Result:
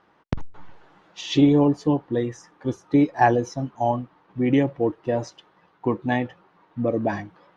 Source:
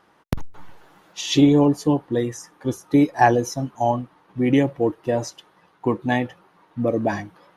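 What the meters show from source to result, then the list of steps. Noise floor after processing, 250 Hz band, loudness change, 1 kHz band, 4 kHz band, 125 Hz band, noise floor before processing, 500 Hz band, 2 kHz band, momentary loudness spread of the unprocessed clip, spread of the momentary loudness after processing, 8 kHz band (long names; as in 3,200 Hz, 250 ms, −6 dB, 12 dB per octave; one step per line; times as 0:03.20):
−61 dBFS, −1.5 dB, −2.0 dB, −2.0 dB, −4.5 dB, −1.5 dB, −59 dBFS, −2.0 dB, −2.5 dB, 16 LU, 16 LU, −9.5 dB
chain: high-frequency loss of the air 120 metres
level −1.5 dB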